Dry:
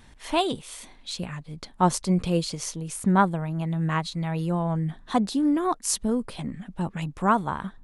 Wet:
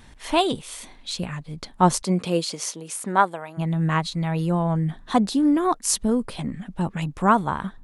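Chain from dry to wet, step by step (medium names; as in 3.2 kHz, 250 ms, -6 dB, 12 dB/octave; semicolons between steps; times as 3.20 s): 2.02–3.57 s: high-pass 180 Hz -> 580 Hz 12 dB/octave; trim +3.5 dB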